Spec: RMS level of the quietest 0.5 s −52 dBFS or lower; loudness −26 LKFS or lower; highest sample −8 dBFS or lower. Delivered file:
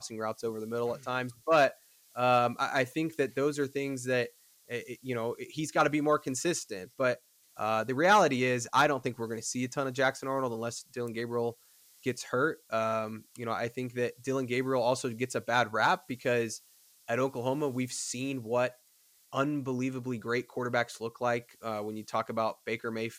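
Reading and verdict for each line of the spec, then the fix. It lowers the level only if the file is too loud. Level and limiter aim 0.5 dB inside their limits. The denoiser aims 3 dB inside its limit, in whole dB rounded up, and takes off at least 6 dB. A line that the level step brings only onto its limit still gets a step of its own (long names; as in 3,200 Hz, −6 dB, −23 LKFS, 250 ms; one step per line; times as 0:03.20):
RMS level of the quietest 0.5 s −65 dBFS: in spec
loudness −31.0 LKFS: in spec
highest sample −12.0 dBFS: in spec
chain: no processing needed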